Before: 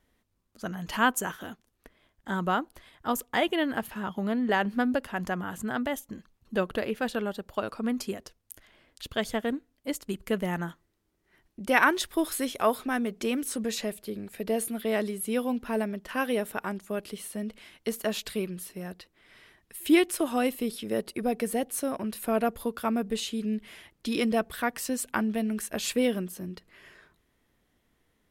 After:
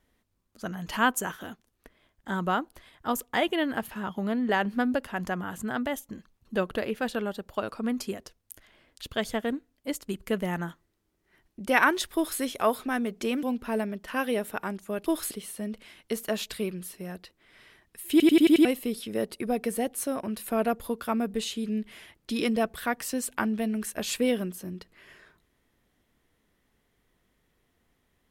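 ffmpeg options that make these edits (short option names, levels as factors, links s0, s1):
-filter_complex "[0:a]asplit=10[s0][s1][s2][s3][s4][s5][s6][s7][s8][s9];[s0]atrim=end=13.432[s10];[s1]atrim=start=15.438:end=17.072[s11];[s2]atrim=start=12.148:end=12.402[s12];[s3]atrim=start=17.068:end=19.962[s13];[s4]atrim=start=19.868:end=19.962[s14];[s5]atrim=start=19.868:end=19.962[s15];[s6]atrim=start=19.868:end=19.962[s16];[s7]atrim=start=19.868:end=19.962[s17];[s8]atrim=start=19.868:end=19.962[s18];[s9]atrim=start=20.408[s19];[s10][s11]acrossfade=d=0.004:c1=hsin:c2=hsin[s20];[s20][s12]acrossfade=d=0.004:c1=hsin:c2=hsin[s21];[s21][s13]acrossfade=d=0.004:c1=hsin:c2=hsin[s22];[s22][s14]acrossfade=d=0.004:c1=hsin:c2=hsin[s23];[s23][s15]acrossfade=d=0.004:c1=hsin:c2=hsin[s24];[s24][s16]acrossfade=d=0.004:c1=hsin:c2=hsin[s25];[s25][s17]acrossfade=d=0.004:c1=hsin:c2=hsin[s26];[s26][s18]acrossfade=d=0.004:c1=hsin:c2=hsin[s27];[s27][s19]acrossfade=d=0.004:c1=hsin:c2=hsin"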